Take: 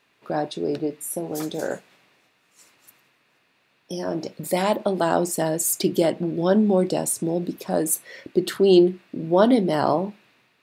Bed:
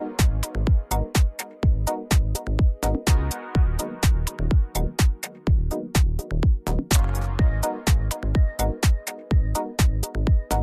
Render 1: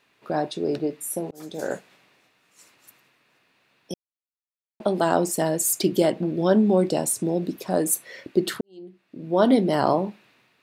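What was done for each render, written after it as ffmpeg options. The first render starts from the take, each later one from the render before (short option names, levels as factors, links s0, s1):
-filter_complex "[0:a]asplit=5[s0][s1][s2][s3][s4];[s0]atrim=end=1.31,asetpts=PTS-STARTPTS,afade=t=out:st=1.306:d=0.004:c=hsin[s5];[s1]atrim=start=1.31:end=3.94,asetpts=PTS-STARTPTS,afade=t=in:d=0.41,afade=t=out:st=2.626:d=0.004:c=hsin[s6];[s2]atrim=start=3.94:end=4.8,asetpts=PTS-STARTPTS,volume=0[s7];[s3]atrim=start=4.8:end=8.61,asetpts=PTS-STARTPTS,afade=t=in:d=0.004:c=hsin,afade=t=out:st=3.806:d=0.004:c=hsin[s8];[s4]atrim=start=8.61,asetpts=PTS-STARTPTS,afade=t=in:d=0.91:c=qua[s9];[s5][s6][s7][s8][s9]concat=n=5:v=0:a=1"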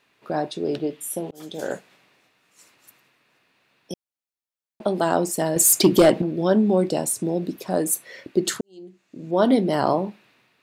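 -filter_complex "[0:a]asettb=1/sr,asplit=3[s0][s1][s2];[s0]atrim=end=0.654[s3];[s1]atrim=start=0.65:end=1.72,asetpts=PTS-STARTPTS,afade=t=in:d=0.004:c=qsin,afade=t=out:st=1.066:d=0.004:c=qsin,equalizer=f=3200:w=4.6:g=10.5[s4];[s2]atrim=start=1.716[s5];[s3][s4]acrossfade=d=0.004:c1=hsin:c2=qsin[s6];[s6][s5]acrossfade=d=0.004:c1=qsin:c2=hsin,asettb=1/sr,asplit=3[s7][s8][s9];[s7]atrim=end=5.564[s10];[s8]atrim=start=5.56:end=6.22,asetpts=PTS-STARTPTS,afade=t=in:d=0.004:c=qsin,afade=t=out:st=0.656:d=0.004:c=qsin,aeval=exprs='0.422*sin(PI/2*1.58*val(0)/0.422)':c=same[s11];[s9]atrim=start=6.216[s12];[s10][s11]acrossfade=d=0.004:c1=hsin:c2=qsin[s13];[s13][s12]acrossfade=d=0.004:c1=qsin:c2=hsin,asettb=1/sr,asplit=3[s14][s15][s16];[s14]atrim=end=8.454[s17];[s15]atrim=start=8.45:end=9.31,asetpts=PTS-STARTPTS,afade=t=in:d=0.004:c=qsin,afade=t=out:st=0.856:d=0.004:c=qsin,equalizer=f=6900:t=o:w=0.64:g=14.5[s18];[s16]atrim=start=9.306[s19];[s17][s18]acrossfade=d=0.004:c1=hsin:c2=qsin[s20];[s20][s19]acrossfade=d=0.004:c1=qsin:c2=hsin"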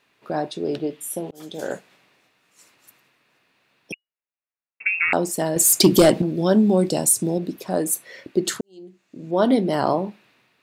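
-filter_complex "[0:a]asettb=1/sr,asplit=3[s0][s1][s2];[s0]atrim=end=3.924[s3];[s1]atrim=start=3.92:end=5.13,asetpts=PTS-STARTPTS,afade=t=in:d=0.004:c=qsin,afade=t=out:st=1.206:d=0.004:c=qsin,lowpass=f=2500:t=q:w=0.5098,lowpass=f=2500:t=q:w=0.6013,lowpass=f=2500:t=q:w=0.9,lowpass=f=2500:t=q:w=2.563,afreqshift=-2900[s4];[s2]atrim=start=5.126[s5];[s3][s4]acrossfade=d=0.004:c1=hsin:c2=qsin[s6];[s6][s5]acrossfade=d=0.004:c1=qsin:c2=hsin,asettb=1/sr,asplit=3[s7][s8][s9];[s7]atrim=end=5.804[s10];[s8]atrim=start=5.8:end=7.38,asetpts=PTS-STARTPTS,afade=t=in:d=0.004:c=qsin,afade=t=out:st=1.576:d=0.004:c=qsin,bass=f=250:g=4,treble=f=4000:g=8[s11];[s9]atrim=start=7.376[s12];[s10][s11]acrossfade=d=0.004:c1=hsin:c2=qsin[s13];[s13][s12]acrossfade=d=0.004:c1=qsin:c2=hsin"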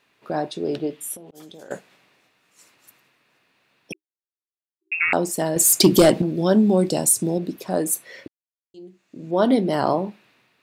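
-filter_complex "[0:a]asettb=1/sr,asplit=3[s0][s1][s2];[s0]atrim=end=1.154[s3];[s1]atrim=start=1.15:end=1.71,asetpts=PTS-STARTPTS,afade=t=in:d=0.004:c=qsin,afade=t=out:st=0.556:d=0.004:c=qsin,acompressor=threshold=0.0112:ratio=6:attack=3.2:release=140:knee=1:detection=peak[s4];[s2]atrim=start=1.706[s5];[s3][s4]acrossfade=d=0.004:c1=hsin:c2=qsin[s6];[s6][s5]acrossfade=d=0.004:c1=qsin:c2=hsin,asettb=1/sr,asplit=3[s7][s8][s9];[s7]atrim=end=3.934[s10];[s8]atrim=start=3.93:end=4.92,asetpts=PTS-STARTPTS,afade=t=in:d=0.004:c=qsin,afade=t=out:st=0.986:d=0.004:c=qsin,asuperpass=centerf=350:order=12:qfactor=4.1[s11];[s9]atrim=start=4.916[s12];[s10][s11]acrossfade=d=0.004:c1=hsin:c2=qsin[s13];[s13][s12]acrossfade=d=0.004:c1=qsin:c2=hsin,asplit=3[s14][s15][s16];[s14]atrim=end=8.28,asetpts=PTS-STARTPTS,afade=t=out:st=8.276:d=0.004:c=hsin[s17];[s15]atrim=start=8.28:end=8.74,asetpts=PTS-STARTPTS,volume=0[s18];[s16]atrim=start=8.74,asetpts=PTS-STARTPTS,afade=t=in:d=0.004:c=hsin[s19];[s17][s18][s19]concat=n=3:v=0:a=1"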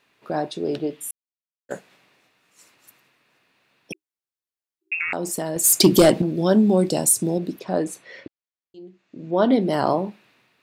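-filter_complex "[0:a]asettb=1/sr,asplit=3[s0][s1][s2];[s0]atrim=end=4.944[s3];[s1]atrim=start=4.94:end=5.64,asetpts=PTS-STARTPTS,afade=t=in:d=0.004:c=qsin,afade=t=out:st=0.696:d=0.004:c=qsin,acompressor=threshold=0.0891:ratio=6:attack=3.2:release=140:knee=1:detection=peak[s4];[s2]atrim=start=5.636[s5];[s3][s4]acrossfade=d=0.004:c1=hsin:c2=qsin[s6];[s6][s5]acrossfade=d=0.004:c1=qsin:c2=hsin,asettb=1/sr,asplit=3[s7][s8][s9];[s7]atrim=end=7.594[s10];[s8]atrim=start=7.59:end=9.61,asetpts=PTS-STARTPTS,afade=t=in:d=0.004:c=qsin,afade=t=out:st=2.016:d=0.004:c=qsin,lowpass=4600[s11];[s9]atrim=start=9.606[s12];[s10][s11]acrossfade=d=0.004:c1=hsin:c2=qsin[s13];[s13][s12]acrossfade=d=0.004:c1=qsin:c2=hsin,asplit=3[s14][s15][s16];[s14]atrim=end=1.11,asetpts=PTS-STARTPTS,afade=t=out:st=1.106:d=0.004:c=hsin[s17];[s15]atrim=start=1.11:end=1.69,asetpts=PTS-STARTPTS,volume=0[s18];[s16]atrim=start=1.69,asetpts=PTS-STARTPTS,afade=t=in:d=0.004:c=hsin[s19];[s17][s18][s19]concat=n=3:v=0:a=1"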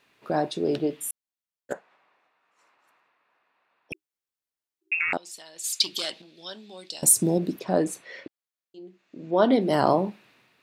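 -filter_complex "[0:a]asettb=1/sr,asplit=3[s0][s1][s2];[s0]atrim=end=1.734[s3];[s1]atrim=start=1.73:end=3.92,asetpts=PTS-STARTPTS,afade=t=in:d=0.004:c=qsin,afade=t=out:st=2.186:d=0.004:c=qsin,bandpass=f=1000:t=q:w=1.4[s4];[s2]atrim=start=3.916[s5];[s3][s4]acrossfade=d=0.004:c1=hsin:c2=qsin[s6];[s6][s5]acrossfade=d=0.004:c1=qsin:c2=hsin,asettb=1/sr,asplit=3[s7][s8][s9];[s7]atrim=end=5.174[s10];[s8]atrim=start=5.17:end=7.03,asetpts=PTS-STARTPTS,afade=t=in:d=0.004:c=qsin,afade=t=out:st=1.856:d=0.004:c=qsin,bandpass=f=3800:t=q:w=2.2[s11];[s9]atrim=start=7.026[s12];[s10][s11]acrossfade=d=0.004:c1=hsin:c2=qsin[s13];[s13][s12]acrossfade=d=0.004:c1=qsin:c2=hsin,asettb=1/sr,asplit=3[s14][s15][s16];[s14]atrim=end=8.014[s17];[s15]atrim=start=8.01:end=9.71,asetpts=PTS-STARTPTS,afade=t=in:d=0.004:c=qsin,afade=t=out:st=1.696:d=0.004:c=qsin,highpass=f=270:p=1[s18];[s16]atrim=start=9.706[s19];[s17][s18]acrossfade=d=0.004:c1=hsin:c2=qsin[s20];[s20][s19]acrossfade=d=0.004:c1=qsin:c2=hsin"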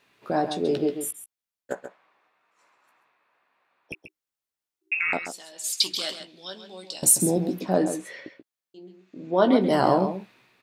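-filter_complex "[0:a]asplit=2[s0][s1];[s1]adelay=16,volume=0.355[s2];[s0][s2]amix=inputs=2:normalize=0,asplit=2[s3][s4];[s4]adelay=134.1,volume=0.355,highshelf=f=4000:g=-3.02[s5];[s3][s5]amix=inputs=2:normalize=0"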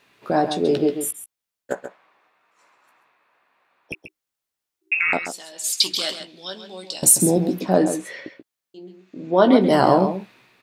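-af "volume=1.78,alimiter=limit=0.794:level=0:latency=1"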